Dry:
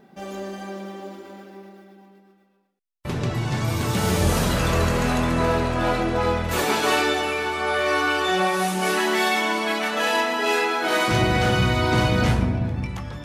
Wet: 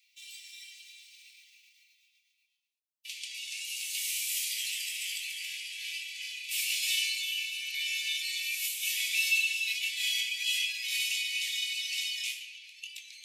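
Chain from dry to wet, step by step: dynamic EQ 3500 Hz, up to -5 dB, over -39 dBFS, Q 1.3; formant shift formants +3 st; steep high-pass 2300 Hz 72 dB/oct

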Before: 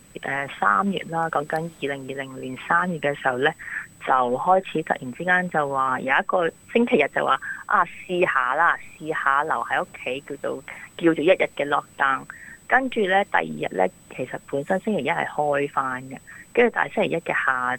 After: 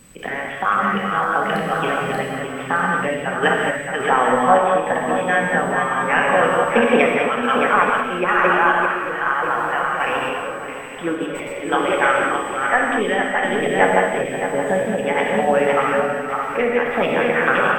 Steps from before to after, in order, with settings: regenerating reverse delay 0.309 s, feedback 61%, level -2.5 dB; 11.15–11.66 negative-ratio compressor -27 dBFS, ratio -1; random-step tremolo; non-linear reverb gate 0.25 s flat, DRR 0 dB; ending taper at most 150 dB/s; gain +1.5 dB

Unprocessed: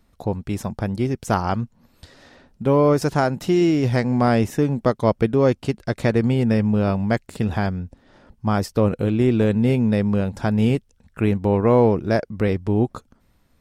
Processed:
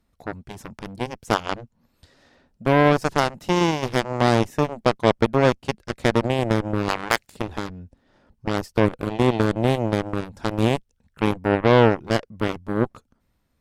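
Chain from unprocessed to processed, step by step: 6.88–7.31 spectral limiter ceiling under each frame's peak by 22 dB; added harmonics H 7 -14 dB, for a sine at -4 dBFS

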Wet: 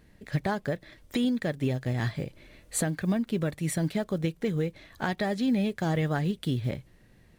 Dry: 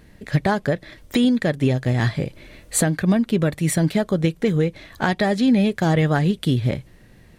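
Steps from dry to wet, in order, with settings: block floating point 7-bit; gain -9 dB

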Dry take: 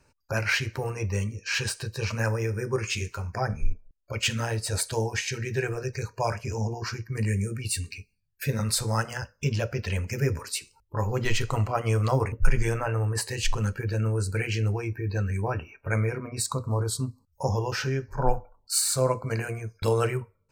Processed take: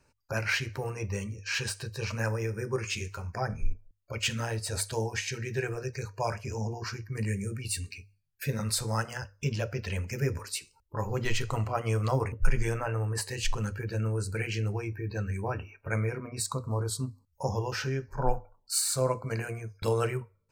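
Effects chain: notches 50/100 Hz; gain -3.5 dB

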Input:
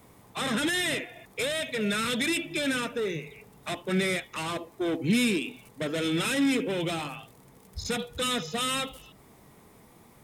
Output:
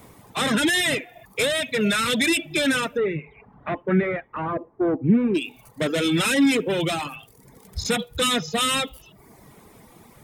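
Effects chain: reverb removal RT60 0.76 s; 2.96–5.34 LPF 2500 Hz -> 1200 Hz 24 dB/oct; gain +7.5 dB

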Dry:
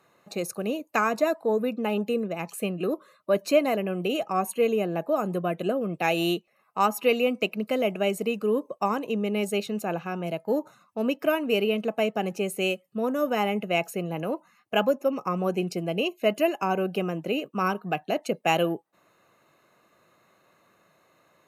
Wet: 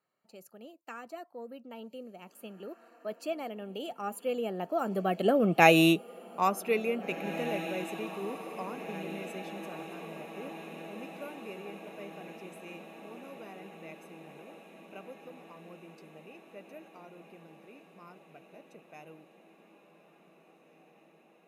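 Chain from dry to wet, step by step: Doppler pass-by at 5.62, 25 m/s, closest 6.7 m; diffused feedback echo 1.916 s, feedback 64%, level -14 dB; gain +5.5 dB

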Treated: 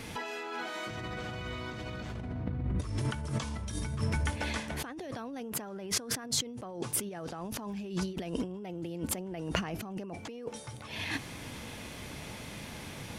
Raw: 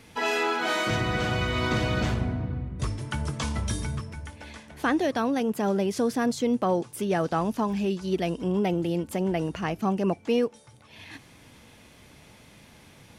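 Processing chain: 5.5–6.24 dynamic EQ 1400 Hz, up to +7 dB, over -44 dBFS, Q 0.96; negative-ratio compressor -37 dBFS, ratio -1

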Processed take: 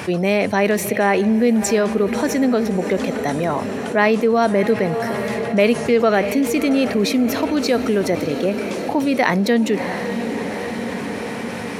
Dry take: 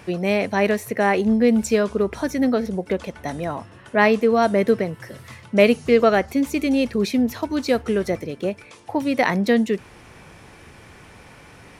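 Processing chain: HPF 120 Hz 12 dB/oct; on a send: diffused feedback echo 0.66 s, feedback 63%, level -15 dB; on the sum: fast leveller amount 50%; gain -1.5 dB

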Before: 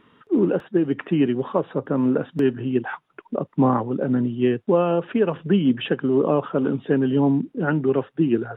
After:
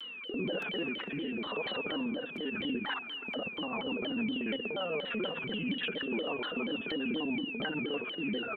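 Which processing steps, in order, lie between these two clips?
local time reversal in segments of 49 ms; HPF 640 Hz 6 dB/oct; comb 4.2 ms, depth 70%; limiter -21.5 dBFS, peak gain reduction 11.5 dB; compressor 4:1, threshold -36 dBFS, peak gain reduction 9.5 dB; transient shaper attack -6 dB, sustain +5 dB; whine 2700 Hz -41 dBFS; rotary speaker horn 1 Hz, later 6.7 Hz, at 2.39; on a send: multi-head echo 66 ms, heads second and third, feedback 69%, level -21 dB; on the sum: shaped vibrato saw down 4.2 Hz, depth 250 cents; gain +4.5 dB

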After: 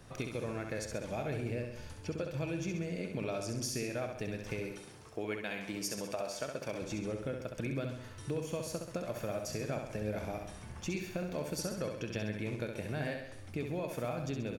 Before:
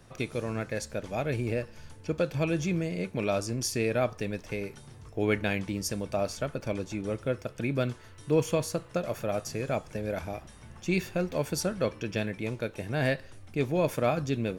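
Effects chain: 4.72–6.82 HPF 390 Hz 6 dB/oct; compressor, threshold -35 dBFS, peak gain reduction 15 dB; feedback echo 66 ms, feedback 54%, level -5.5 dB

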